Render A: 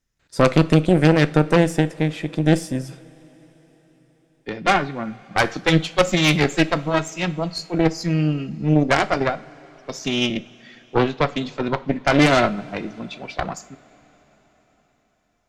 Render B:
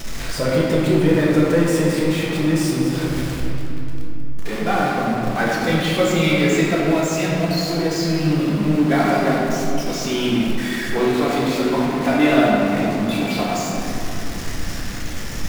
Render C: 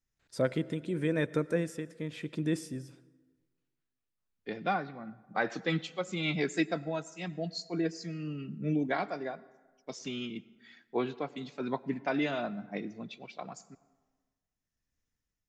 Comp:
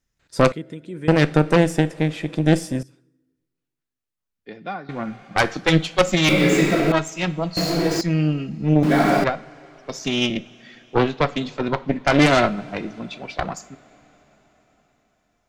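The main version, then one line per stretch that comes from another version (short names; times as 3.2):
A
0.52–1.08 from C
2.83–4.89 from C
6.29–6.92 from B
7.57–8.01 from B
8.83–9.24 from B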